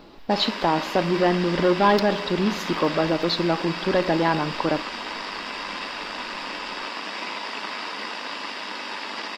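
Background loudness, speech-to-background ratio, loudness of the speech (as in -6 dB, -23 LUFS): -31.0 LUFS, 8.0 dB, -23.0 LUFS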